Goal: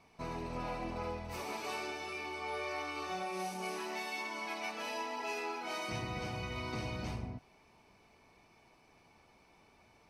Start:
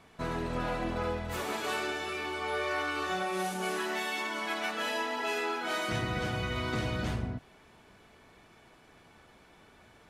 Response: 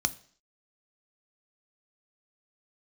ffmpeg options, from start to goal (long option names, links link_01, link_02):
-filter_complex "[0:a]asplit=2[link_01][link_02];[link_02]highpass=frequency=820:width=0.5412,highpass=frequency=820:width=1.3066[link_03];[1:a]atrim=start_sample=2205[link_04];[link_03][link_04]afir=irnorm=-1:irlink=0,volume=-11dB[link_05];[link_01][link_05]amix=inputs=2:normalize=0,volume=-7dB"